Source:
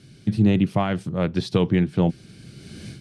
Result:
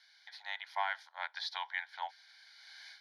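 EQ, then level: steep high-pass 870 Hz 48 dB/octave; low-pass 2.7 kHz 6 dB/octave; static phaser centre 1.8 kHz, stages 8; +1.5 dB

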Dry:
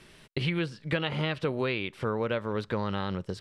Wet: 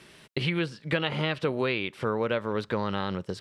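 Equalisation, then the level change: high-pass 130 Hz 6 dB/octave; +2.5 dB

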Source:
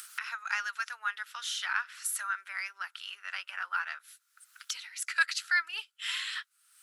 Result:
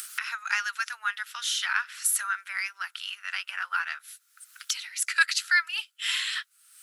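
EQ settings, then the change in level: high-pass 560 Hz 12 dB/octave; peaking EQ 2.2 kHz +4 dB 2 oct; treble shelf 4.5 kHz +9.5 dB; 0.0 dB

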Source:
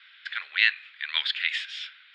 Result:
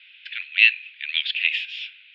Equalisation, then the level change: ladder band-pass 2.8 kHz, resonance 75%; +9.0 dB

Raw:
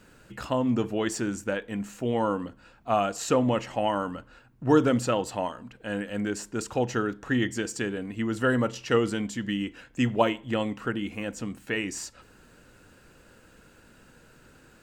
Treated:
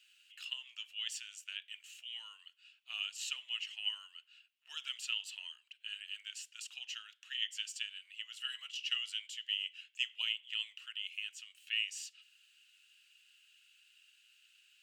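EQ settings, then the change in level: ladder high-pass 2.7 kHz, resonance 75%; +2.0 dB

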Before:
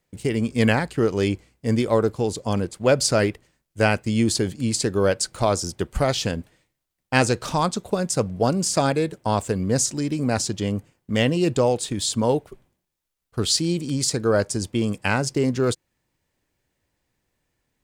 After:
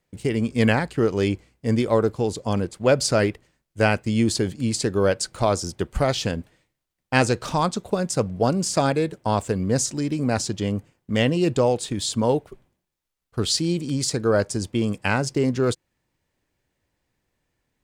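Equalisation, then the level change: treble shelf 6.1 kHz -4.5 dB; 0.0 dB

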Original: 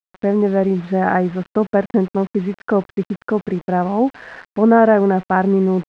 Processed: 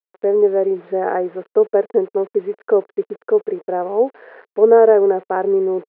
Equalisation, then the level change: resonant high-pass 440 Hz, resonance Q 4.9; distance through air 380 m; -5.5 dB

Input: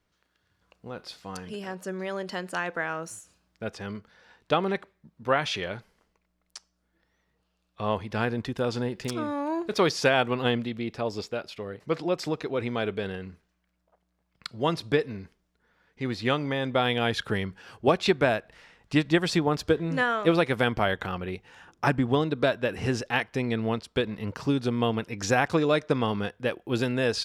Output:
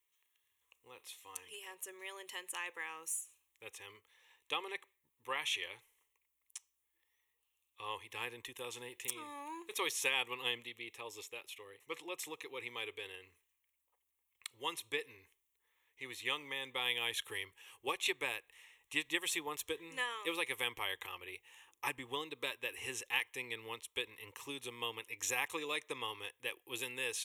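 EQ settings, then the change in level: pre-emphasis filter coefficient 0.97; static phaser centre 980 Hz, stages 8; +6.0 dB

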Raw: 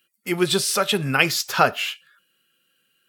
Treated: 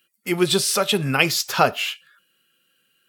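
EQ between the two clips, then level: dynamic bell 1.6 kHz, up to -5 dB, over -32 dBFS, Q 2; +1.5 dB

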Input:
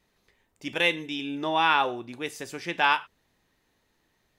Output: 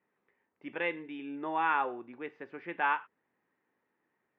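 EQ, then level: high-pass 230 Hz 12 dB/octave; low-pass 2.1 kHz 24 dB/octave; peaking EQ 650 Hz -5 dB 0.28 oct; -5.5 dB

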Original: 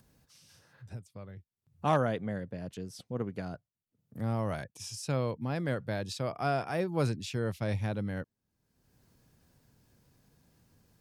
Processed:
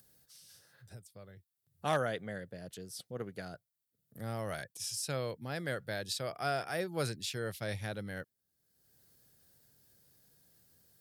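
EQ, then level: tilt EQ +2.5 dB/octave; dynamic bell 2.1 kHz, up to +4 dB, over -49 dBFS, Q 0.87; fifteen-band graphic EQ 250 Hz -5 dB, 1 kHz -9 dB, 2.5 kHz -8 dB, 6.3 kHz -5 dB; 0.0 dB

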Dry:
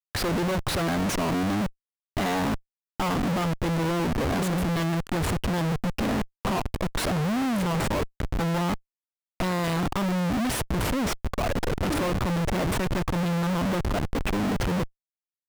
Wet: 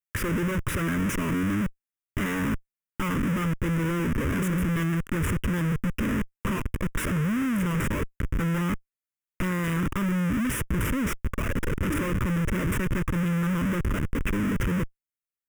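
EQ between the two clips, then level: static phaser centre 1.8 kHz, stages 4; +1.5 dB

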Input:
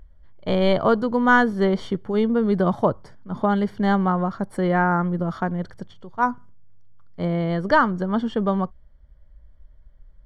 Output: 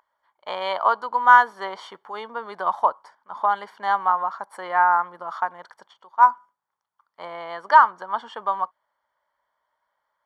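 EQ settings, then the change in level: resonant high-pass 950 Hz, resonance Q 3.7; -3.0 dB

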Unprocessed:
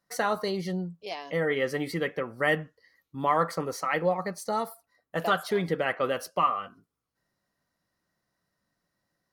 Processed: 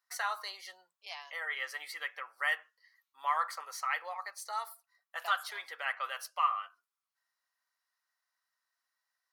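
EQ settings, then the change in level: high-pass 930 Hz 24 dB/octave; -3.5 dB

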